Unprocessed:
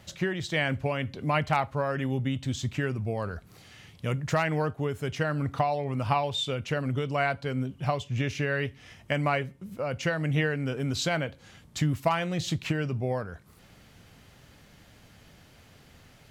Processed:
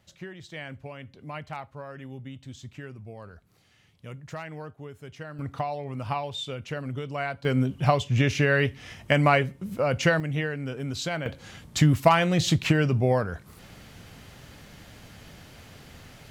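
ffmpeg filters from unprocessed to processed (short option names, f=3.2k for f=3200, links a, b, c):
-af "asetnsamples=n=441:p=0,asendcmd='5.39 volume volume -4dB;7.45 volume volume 6.5dB;10.2 volume volume -2.5dB;11.26 volume volume 7dB',volume=-11.5dB"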